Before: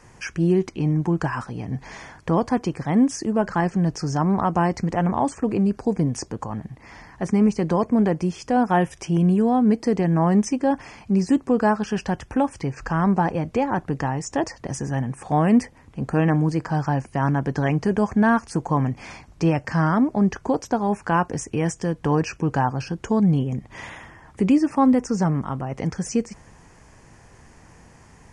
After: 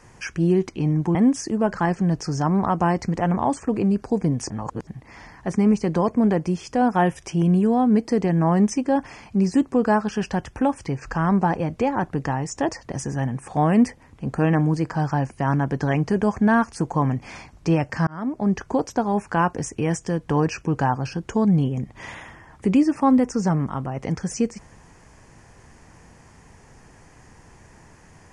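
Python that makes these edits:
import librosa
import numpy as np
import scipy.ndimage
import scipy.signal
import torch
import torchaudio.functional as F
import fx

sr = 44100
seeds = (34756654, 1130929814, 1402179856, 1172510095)

y = fx.edit(x, sr, fx.cut(start_s=1.15, length_s=1.75),
    fx.reverse_span(start_s=6.25, length_s=0.37),
    fx.fade_in_span(start_s=19.82, length_s=0.69, curve='qsin'), tone=tone)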